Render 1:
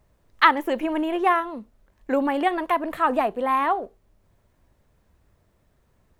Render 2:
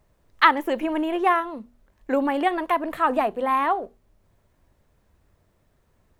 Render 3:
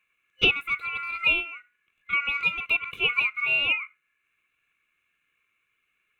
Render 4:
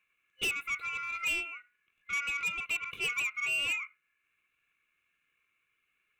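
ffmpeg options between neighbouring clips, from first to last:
-af "bandreject=f=60:t=h:w=6,bandreject=f=120:t=h:w=6,bandreject=f=180:t=h:w=6,bandreject=f=240:t=h:w=6"
-af "aeval=exprs='val(0)*sin(2*PI*1700*n/s)':c=same,superequalizer=8b=0.398:9b=0.282:11b=0.316:12b=3.55:14b=0.316,volume=0.447"
-af "asoftclip=type=tanh:threshold=0.0631,volume=0.668"

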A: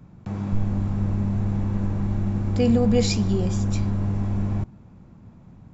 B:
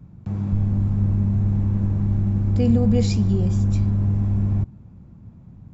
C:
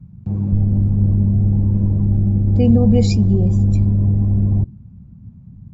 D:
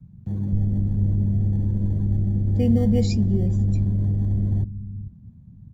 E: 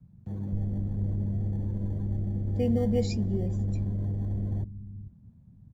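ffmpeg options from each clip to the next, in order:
-af "equalizer=f=77:w=0.31:g=11.5,volume=0.501"
-af "afftdn=nr=14:nf=-38,volume=1.78"
-filter_complex "[0:a]acrossover=split=280|760|1300[s0][s1][s2][s3];[s0]aecho=1:1:437:0.266[s4];[s2]acrusher=samples=17:mix=1:aa=0.000001[s5];[s4][s1][s5][s3]amix=inputs=4:normalize=0,volume=0.501"
-af "firequalizer=gain_entry='entry(170,0);entry(490,7);entry(3700,3)':delay=0.05:min_phase=1,volume=0.376"

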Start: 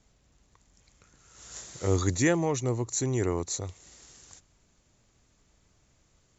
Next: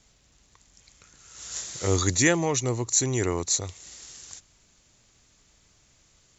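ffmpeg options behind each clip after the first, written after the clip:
-af "equalizer=f=4800:w=0.35:g=8.5,volume=1.12"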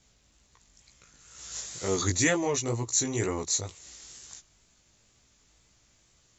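-af "flanger=delay=15:depth=4.6:speed=2.1"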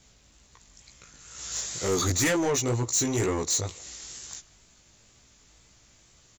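-filter_complex "[0:a]asoftclip=type=tanh:threshold=0.0473,asplit=2[s0][s1];[s1]adelay=160,highpass=300,lowpass=3400,asoftclip=type=hard:threshold=0.015,volume=0.112[s2];[s0][s2]amix=inputs=2:normalize=0,volume=2"

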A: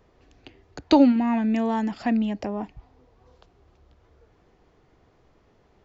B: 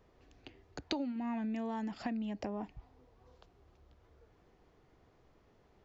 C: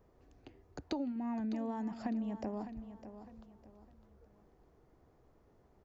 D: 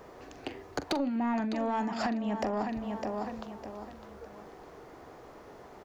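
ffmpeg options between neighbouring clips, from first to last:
-af "acompressor=threshold=0.0398:ratio=10,volume=0.501"
-af "equalizer=f=3100:w=0.68:g=-10,aecho=1:1:606|1212|1818:0.266|0.0878|0.029"
-filter_complex "[0:a]acompressor=threshold=0.00708:ratio=6,asplit=2[s0][s1];[s1]highpass=f=720:p=1,volume=11.2,asoftclip=type=tanh:threshold=0.0447[s2];[s0][s2]amix=inputs=2:normalize=0,lowpass=f=5600:p=1,volume=0.501,asplit=2[s3][s4];[s4]adelay=43,volume=0.224[s5];[s3][s5]amix=inputs=2:normalize=0,volume=2.66"

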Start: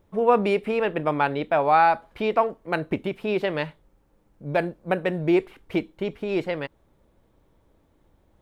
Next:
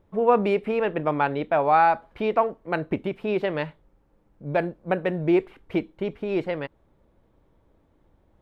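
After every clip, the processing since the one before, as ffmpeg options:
-af "highshelf=f=4300:g=-11"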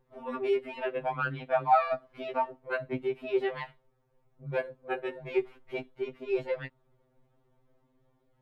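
-af "afftfilt=real='re*2.45*eq(mod(b,6),0)':imag='im*2.45*eq(mod(b,6),0)':win_size=2048:overlap=0.75,volume=0.668"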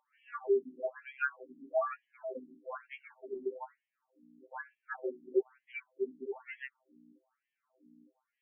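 -filter_complex "[0:a]acrossover=split=220|790[s0][s1][s2];[s0]acrusher=samples=35:mix=1:aa=0.000001[s3];[s3][s1][s2]amix=inputs=3:normalize=0,aeval=exprs='val(0)+0.00398*(sin(2*PI*60*n/s)+sin(2*PI*2*60*n/s)/2+sin(2*PI*3*60*n/s)/3+sin(2*PI*4*60*n/s)/4+sin(2*PI*5*60*n/s)/5)':c=same,afftfilt=real='re*between(b*sr/1024,250*pow(2400/250,0.5+0.5*sin(2*PI*1.1*pts/sr))/1.41,250*pow(2400/250,0.5+0.5*sin(2*PI*1.1*pts/sr))*1.41)':imag='im*between(b*sr/1024,250*pow(2400/250,0.5+0.5*sin(2*PI*1.1*pts/sr))/1.41,250*pow(2400/250,0.5+0.5*sin(2*PI*1.1*pts/sr))*1.41)':win_size=1024:overlap=0.75"

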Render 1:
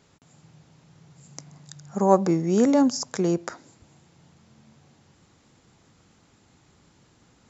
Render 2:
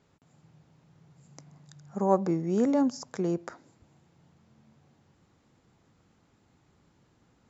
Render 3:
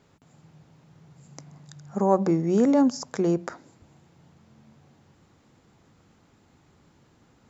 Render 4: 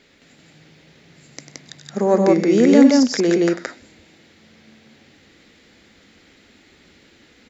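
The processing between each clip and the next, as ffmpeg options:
-af "highshelf=f=2900:g=-8.5,volume=0.531"
-filter_complex "[0:a]bandreject=f=60:t=h:w=6,bandreject=f=120:t=h:w=6,bandreject=f=180:t=h:w=6,asplit=2[s0][s1];[s1]alimiter=limit=0.1:level=0:latency=1:release=76,volume=1[s2];[s0][s2]amix=inputs=2:normalize=0"
-filter_complex "[0:a]equalizer=f=125:t=o:w=1:g=-12,equalizer=f=250:t=o:w=1:g=4,equalizer=f=500:t=o:w=1:g=3,equalizer=f=1000:t=o:w=1:g=-9,equalizer=f=2000:t=o:w=1:g=11,equalizer=f=4000:t=o:w=1:g=9,asplit=2[s0][s1];[s1]aecho=0:1:96.21|172:0.316|0.891[s2];[s0][s2]amix=inputs=2:normalize=0,volume=1.58"

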